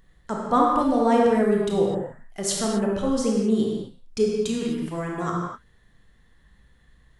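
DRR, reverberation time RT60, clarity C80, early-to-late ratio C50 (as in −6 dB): −2.5 dB, non-exponential decay, 2.0 dB, 0.0 dB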